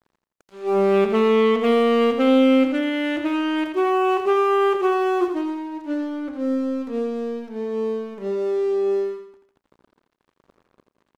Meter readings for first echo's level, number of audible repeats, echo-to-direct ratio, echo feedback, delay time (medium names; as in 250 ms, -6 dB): -7.0 dB, 4, -6.0 dB, 40%, 84 ms